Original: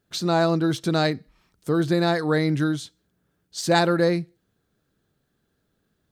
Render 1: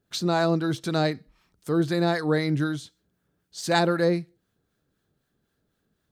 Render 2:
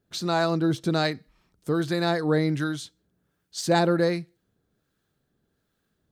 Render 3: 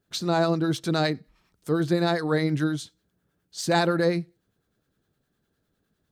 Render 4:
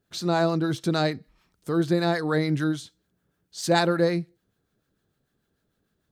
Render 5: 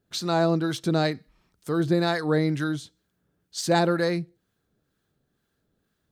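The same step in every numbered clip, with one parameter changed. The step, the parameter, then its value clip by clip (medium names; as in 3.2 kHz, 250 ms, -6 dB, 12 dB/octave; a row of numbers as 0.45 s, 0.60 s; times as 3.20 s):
harmonic tremolo, rate: 3.9 Hz, 1.3 Hz, 9.8 Hz, 6.7 Hz, 2.1 Hz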